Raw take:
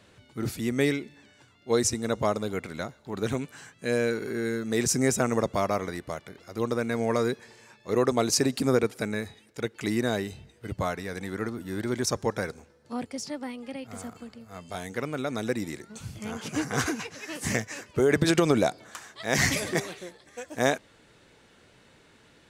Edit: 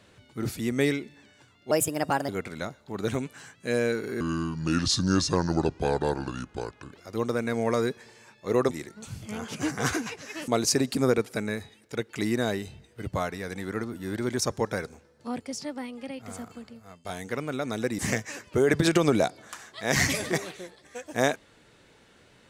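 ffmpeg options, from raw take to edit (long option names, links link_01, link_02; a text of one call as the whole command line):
ffmpeg -i in.wav -filter_complex "[0:a]asplit=9[link_01][link_02][link_03][link_04][link_05][link_06][link_07][link_08][link_09];[link_01]atrim=end=1.714[link_10];[link_02]atrim=start=1.71:end=2.47,asetpts=PTS-STARTPTS,asetrate=58212,aresample=44100[link_11];[link_03]atrim=start=2.466:end=4.394[link_12];[link_04]atrim=start=4.39:end=6.35,asetpts=PTS-STARTPTS,asetrate=31752,aresample=44100[link_13];[link_05]atrim=start=6.346:end=8.132[link_14];[link_06]atrim=start=15.638:end=17.412[link_15];[link_07]atrim=start=8.128:end=14.7,asetpts=PTS-STARTPTS,afade=type=out:start_time=6.262:duration=0.31:silence=0.11885[link_16];[link_08]atrim=start=14.7:end=15.642,asetpts=PTS-STARTPTS,afade=type=in:duration=0.004:curve=hsin:silence=0.11885[link_17];[link_09]atrim=start=17.408[link_18];[link_10][link_11]acrossfade=duration=0.004:curve1=hsin:curve2=hsin[link_19];[link_19][link_12]acrossfade=duration=0.004:curve1=hsin:curve2=hsin[link_20];[link_20][link_13]acrossfade=duration=0.004:curve1=hsin:curve2=hsin[link_21];[link_21][link_14]acrossfade=duration=0.004:curve1=hsin:curve2=hsin[link_22];[link_22][link_15]acrossfade=duration=0.004:curve1=hsin:curve2=hsin[link_23];[link_16][link_17]concat=n=2:v=0:a=1[link_24];[link_23][link_24]acrossfade=duration=0.004:curve1=hsin:curve2=hsin[link_25];[link_25][link_18]acrossfade=duration=0.004:curve1=hsin:curve2=hsin" out.wav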